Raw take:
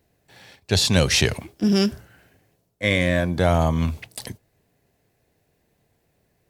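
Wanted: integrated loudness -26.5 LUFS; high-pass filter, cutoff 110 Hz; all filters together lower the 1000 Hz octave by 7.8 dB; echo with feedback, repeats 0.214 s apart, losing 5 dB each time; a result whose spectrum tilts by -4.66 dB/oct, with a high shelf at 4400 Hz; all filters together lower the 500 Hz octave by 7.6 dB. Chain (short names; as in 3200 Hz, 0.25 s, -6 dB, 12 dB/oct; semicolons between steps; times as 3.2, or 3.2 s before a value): HPF 110 Hz; bell 500 Hz -7.5 dB; bell 1000 Hz -7.5 dB; high shelf 4400 Hz -7 dB; feedback echo 0.214 s, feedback 56%, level -5 dB; gain -2.5 dB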